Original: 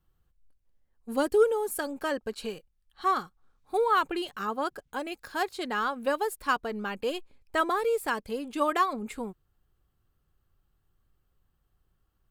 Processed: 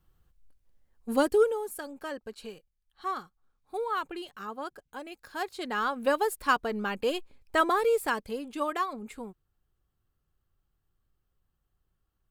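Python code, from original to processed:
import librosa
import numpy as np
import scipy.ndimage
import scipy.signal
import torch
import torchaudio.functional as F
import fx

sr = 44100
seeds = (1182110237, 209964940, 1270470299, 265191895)

y = fx.gain(x, sr, db=fx.line((1.11, 4.0), (1.77, -7.0), (5.12, -7.0), (6.06, 2.0), (7.94, 2.0), (8.74, -5.0)))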